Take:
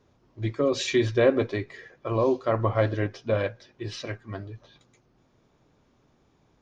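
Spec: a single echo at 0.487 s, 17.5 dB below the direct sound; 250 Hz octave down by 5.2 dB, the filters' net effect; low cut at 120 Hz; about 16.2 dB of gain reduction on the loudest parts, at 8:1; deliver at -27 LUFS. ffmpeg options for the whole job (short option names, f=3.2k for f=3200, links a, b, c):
-af "highpass=120,equalizer=f=250:t=o:g=-7.5,acompressor=threshold=-34dB:ratio=8,aecho=1:1:487:0.133,volume=12.5dB"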